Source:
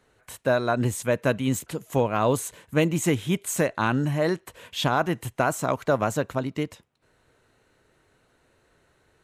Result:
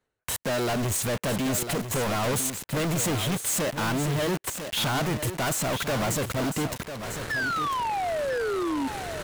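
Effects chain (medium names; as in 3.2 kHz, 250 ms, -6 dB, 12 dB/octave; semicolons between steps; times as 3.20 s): level held to a coarse grid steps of 11 dB; waveshaping leveller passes 5; reverse; upward compressor, threshold -24 dBFS; reverse; waveshaping leveller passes 5; painted sound fall, 7.30–8.88 s, 260–1800 Hz -21 dBFS; saturation -23.5 dBFS, distortion -10 dB; on a send: delay 998 ms -9 dB; on the sum: trim -2 dB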